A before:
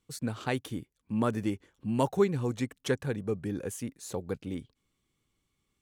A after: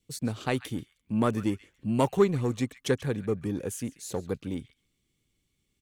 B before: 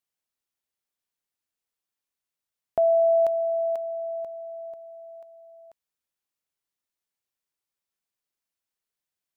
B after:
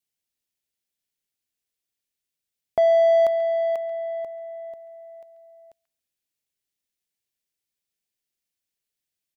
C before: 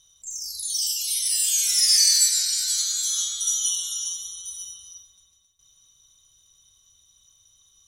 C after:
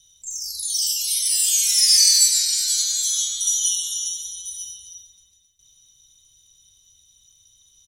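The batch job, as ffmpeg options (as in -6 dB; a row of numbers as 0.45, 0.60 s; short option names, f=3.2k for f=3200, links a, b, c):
-filter_complex "[0:a]adynamicequalizer=threshold=0.00224:dfrequency=1200:dqfactor=6.5:tfrequency=1200:tqfactor=6.5:attack=5:release=100:ratio=0.375:range=2.5:mode=boostabove:tftype=bell,acrossover=split=1500[a][b];[a]adynamicsmooth=sensitivity=2:basefreq=760[c];[b]asplit=2[d][e];[e]adelay=137,lowpass=f=1.9k:p=1,volume=-8dB,asplit=2[f][g];[g]adelay=137,lowpass=f=1.9k:p=1,volume=0.18,asplit=2[h][i];[i]adelay=137,lowpass=f=1.9k:p=1,volume=0.18[j];[d][f][h][j]amix=inputs=4:normalize=0[k];[c][k]amix=inputs=2:normalize=0,volume=3dB"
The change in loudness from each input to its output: +2.5, +3.0, +3.0 LU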